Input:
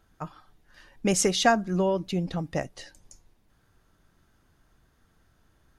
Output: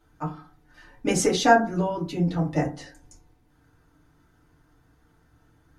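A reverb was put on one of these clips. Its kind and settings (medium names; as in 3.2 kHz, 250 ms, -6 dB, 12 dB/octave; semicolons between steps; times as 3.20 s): FDN reverb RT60 0.35 s, low-frequency decay 1.25×, high-frequency decay 0.4×, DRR -6.5 dB; trim -4.5 dB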